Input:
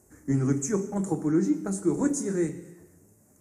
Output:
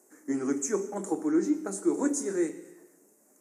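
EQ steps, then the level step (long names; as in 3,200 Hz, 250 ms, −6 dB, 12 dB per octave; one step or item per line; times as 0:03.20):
high-pass filter 270 Hz 24 dB per octave
0.0 dB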